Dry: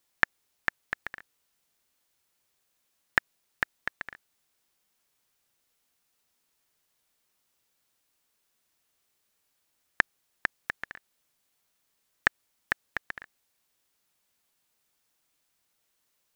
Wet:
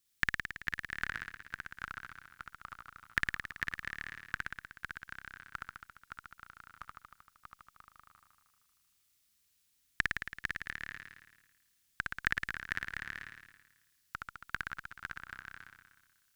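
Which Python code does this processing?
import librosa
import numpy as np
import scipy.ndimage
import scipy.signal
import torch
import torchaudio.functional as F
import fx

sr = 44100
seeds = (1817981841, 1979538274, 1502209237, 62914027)

y = fx.tone_stack(x, sr, knobs='6-0-2')
y = fx.room_flutter(y, sr, wall_m=9.4, rt60_s=1.2)
y = fx.echo_pitch(y, sr, ms=774, semitones=-2, count=3, db_per_echo=-6.0)
y = y * librosa.db_to_amplitude(12.0)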